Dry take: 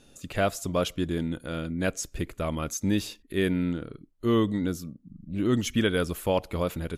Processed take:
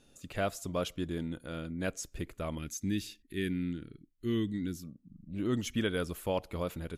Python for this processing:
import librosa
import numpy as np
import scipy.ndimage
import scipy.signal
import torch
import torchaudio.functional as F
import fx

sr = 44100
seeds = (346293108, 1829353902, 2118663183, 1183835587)

y = fx.band_shelf(x, sr, hz=770.0, db=-14.5, octaves=1.7, at=(2.58, 4.83))
y = y * 10.0 ** (-7.0 / 20.0)